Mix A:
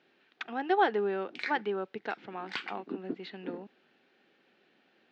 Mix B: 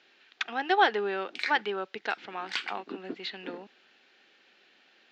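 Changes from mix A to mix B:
speech +4.0 dB
master: add spectral tilt +3.5 dB per octave

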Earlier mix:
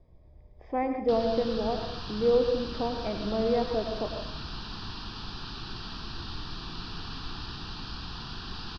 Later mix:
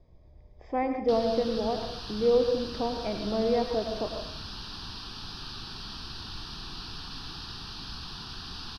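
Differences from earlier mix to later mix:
background: send off
master: remove high-frequency loss of the air 140 metres

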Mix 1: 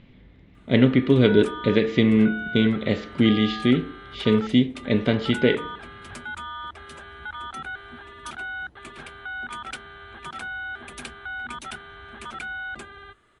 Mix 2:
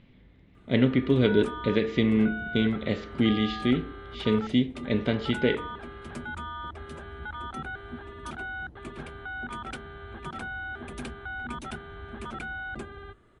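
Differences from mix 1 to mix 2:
speech −5.0 dB
background: add tilt shelving filter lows +7 dB, about 790 Hz

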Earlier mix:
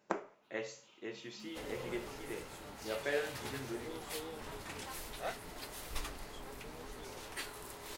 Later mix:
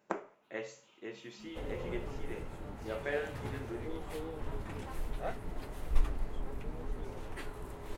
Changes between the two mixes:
second sound: add spectral tilt −3 dB per octave
master: add parametric band 4,800 Hz −5.5 dB 0.95 octaves

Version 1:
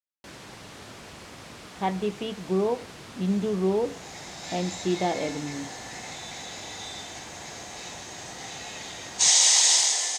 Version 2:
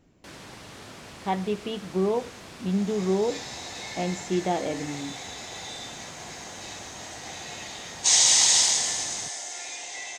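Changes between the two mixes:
speech: entry −0.55 s
second sound: entry −1.15 s

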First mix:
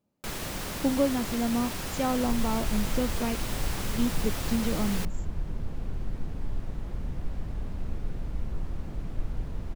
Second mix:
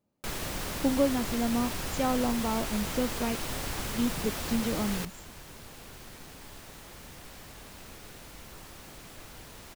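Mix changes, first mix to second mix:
second sound: add spectral tilt +4.5 dB per octave
master: add parametric band 190 Hz −2 dB

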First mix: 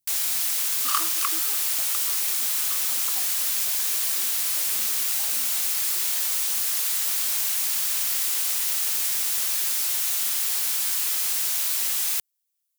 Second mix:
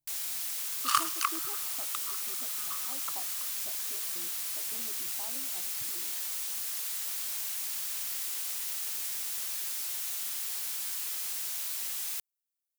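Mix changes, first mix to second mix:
first sound −10.5 dB
master: add low-shelf EQ 120 Hz +6 dB

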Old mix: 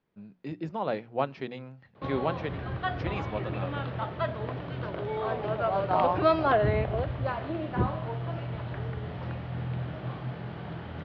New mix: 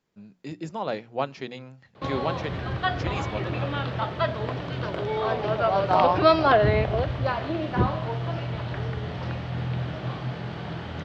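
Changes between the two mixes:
background +4.0 dB
master: remove high-frequency loss of the air 250 metres

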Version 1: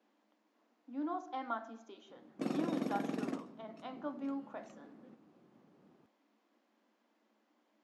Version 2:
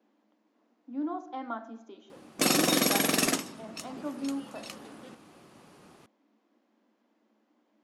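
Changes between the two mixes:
background: remove resonant band-pass 220 Hz, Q 1.2
master: add low-shelf EQ 460 Hz +8.5 dB

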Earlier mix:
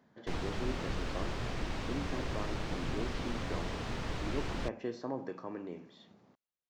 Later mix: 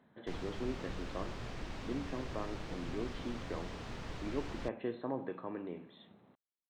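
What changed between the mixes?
speech: add linear-phase brick-wall low-pass 4,200 Hz
background −6.5 dB

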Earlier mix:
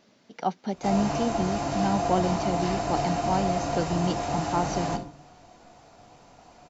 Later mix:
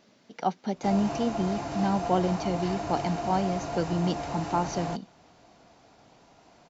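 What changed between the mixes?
background: add high-frequency loss of the air 54 metres
reverb: off

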